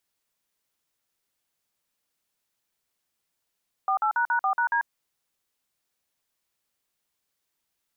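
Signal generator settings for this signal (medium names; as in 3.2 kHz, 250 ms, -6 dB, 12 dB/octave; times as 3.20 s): DTMF "48##4#D", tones 92 ms, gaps 48 ms, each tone -23.5 dBFS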